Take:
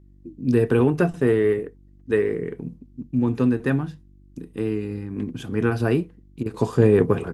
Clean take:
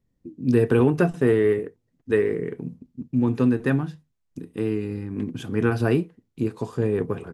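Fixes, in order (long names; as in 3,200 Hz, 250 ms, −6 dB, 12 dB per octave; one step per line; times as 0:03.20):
hum removal 48.6 Hz, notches 7
repair the gap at 0:06.43, 27 ms
level 0 dB, from 0:06.54 −7.5 dB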